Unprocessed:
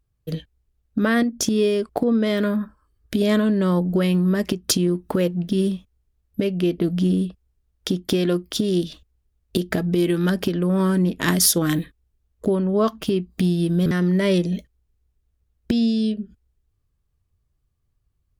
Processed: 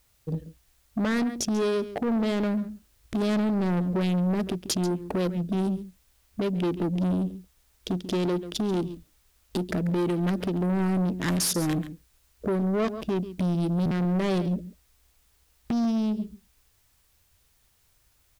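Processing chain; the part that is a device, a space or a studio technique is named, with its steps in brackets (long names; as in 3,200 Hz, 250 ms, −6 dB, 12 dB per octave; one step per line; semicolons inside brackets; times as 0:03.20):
adaptive Wiener filter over 41 samples
single-tap delay 138 ms −16.5 dB
compact cassette (soft clipping −22 dBFS, distortion −11 dB; low-pass filter 12,000 Hz; tape wow and flutter 16 cents; white noise bed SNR 39 dB)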